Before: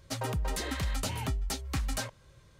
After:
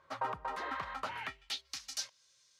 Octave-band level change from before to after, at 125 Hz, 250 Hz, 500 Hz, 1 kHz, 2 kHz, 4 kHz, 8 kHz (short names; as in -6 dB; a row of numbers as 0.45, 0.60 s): -24.0, -15.5, -6.5, +2.0, -2.0, -2.5, -6.0 dB